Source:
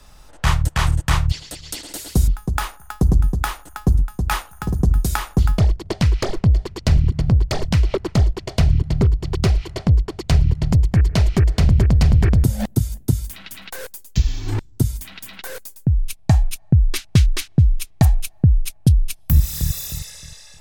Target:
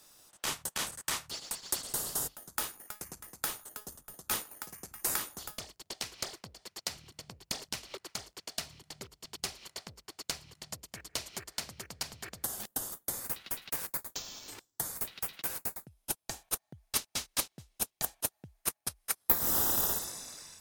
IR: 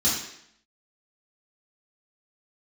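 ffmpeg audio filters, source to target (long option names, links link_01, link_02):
-filter_complex "[0:a]highpass=frequency=130:poles=1,aderivative,asplit=2[link_01][link_02];[link_02]acrusher=samples=15:mix=1:aa=0.000001:lfo=1:lforange=9:lforate=0.57,volume=-9dB[link_03];[link_01][link_03]amix=inputs=2:normalize=0,volume=-3dB"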